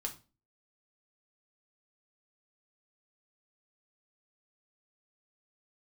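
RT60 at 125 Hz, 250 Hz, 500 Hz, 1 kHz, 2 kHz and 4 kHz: 0.45, 0.45, 0.35, 0.30, 0.30, 0.30 s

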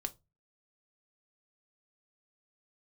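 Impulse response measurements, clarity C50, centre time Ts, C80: 21.5 dB, 4 ms, 31.0 dB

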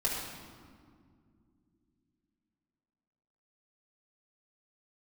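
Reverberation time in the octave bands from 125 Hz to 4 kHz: 3.7, 3.9, 2.5, 1.9, 1.5, 1.2 s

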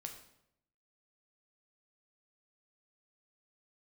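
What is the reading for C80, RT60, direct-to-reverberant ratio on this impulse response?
10.5 dB, 0.75 s, 3.0 dB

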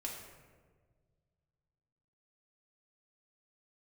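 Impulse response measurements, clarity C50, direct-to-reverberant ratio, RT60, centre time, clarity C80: 3.0 dB, -2.5 dB, 1.6 s, 54 ms, 5.0 dB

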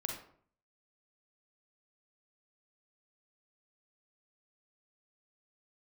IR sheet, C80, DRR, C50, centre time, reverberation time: 8.5 dB, 1.0 dB, 3.5 dB, 32 ms, 0.55 s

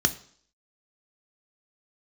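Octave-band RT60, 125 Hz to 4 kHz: 0.50, 0.55, 0.55, 0.55, 0.55, 0.65 s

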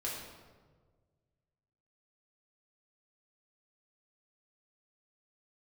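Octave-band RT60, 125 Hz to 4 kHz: 2.3, 1.7, 1.7, 1.3, 1.0, 0.90 s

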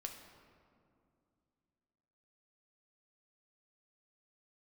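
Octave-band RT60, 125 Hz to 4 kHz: 3.1, 3.2, 2.6, 2.3, 1.7, 1.2 s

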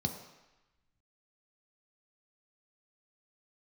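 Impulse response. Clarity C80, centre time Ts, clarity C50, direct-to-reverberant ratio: 9.5 dB, 23 ms, 8.0 dB, 3.5 dB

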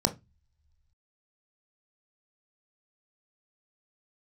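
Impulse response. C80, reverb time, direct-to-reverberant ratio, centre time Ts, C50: 26.0 dB, not exponential, 6.5 dB, 7 ms, 17.0 dB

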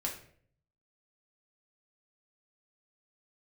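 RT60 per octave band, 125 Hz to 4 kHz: 0.95, 0.70, 0.65, 0.50, 0.50, 0.40 s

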